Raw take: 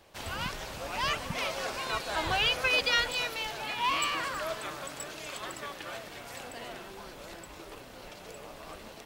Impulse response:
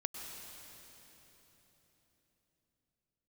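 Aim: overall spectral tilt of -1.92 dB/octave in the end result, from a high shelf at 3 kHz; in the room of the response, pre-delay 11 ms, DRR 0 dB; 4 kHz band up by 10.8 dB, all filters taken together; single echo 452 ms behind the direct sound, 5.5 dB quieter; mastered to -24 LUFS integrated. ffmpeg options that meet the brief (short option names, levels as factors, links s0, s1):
-filter_complex "[0:a]highshelf=f=3000:g=7.5,equalizer=f=4000:t=o:g=9,aecho=1:1:452:0.531,asplit=2[s0][s1];[1:a]atrim=start_sample=2205,adelay=11[s2];[s1][s2]afir=irnorm=-1:irlink=0,volume=0.944[s3];[s0][s3]amix=inputs=2:normalize=0,volume=0.596"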